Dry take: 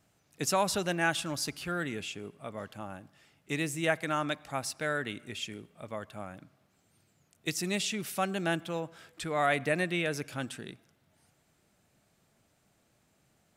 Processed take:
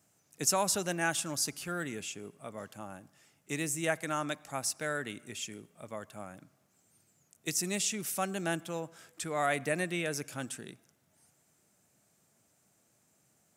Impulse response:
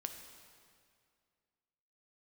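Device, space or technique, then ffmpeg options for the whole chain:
budget condenser microphone: -af "highpass=98,highshelf=f=5100:t=q:w=1.5:g=6.5,volume=0.75"

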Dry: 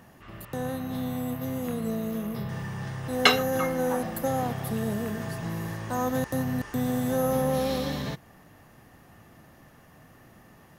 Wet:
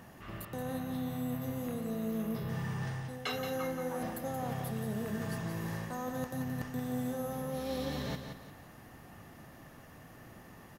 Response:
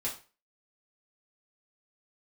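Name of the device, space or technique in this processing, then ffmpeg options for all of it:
compression on the reversed sound: -af "areverse,acompressor=threshold=0.02:ratio=12,areverse,aecho=1:1:176|352|528|704:0.422|0.143|0.0487|0.0166"

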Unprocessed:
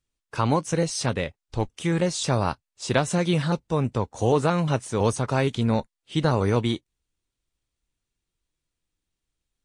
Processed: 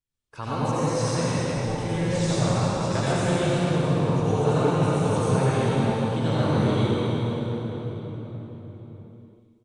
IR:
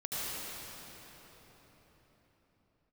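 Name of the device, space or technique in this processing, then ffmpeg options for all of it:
cave: -filter_complex "[0:a]aecho=1:1:236:0.316[s0];[1:a]atrim=start_sample=2205[s1];[s0][s1]afir=irnorm=-1:irlink=0,volume=0.501"

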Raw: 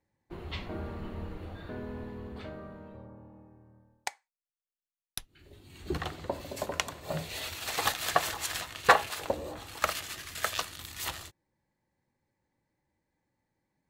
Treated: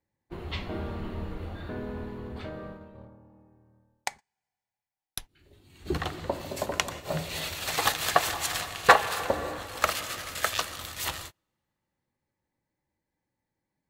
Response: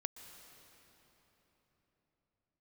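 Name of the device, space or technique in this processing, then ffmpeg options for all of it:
keyed gated reverb: -filter_complex "[0:a]asplit=3[s0][s1][s2];[1:a]atrim=start_sample=2205[s3];[s1][s3]afir=irnorm=-1:irlink=0[s4];[s2]apad=whole_len=612622[s5];[s4][s5]sidechaingate=range=0.0158:threshold=0.00562:ratio=16:detection=peak,volume=1.88[s6];[s0][s6]amix=inputs=2:normalize=0,volume=0.631"

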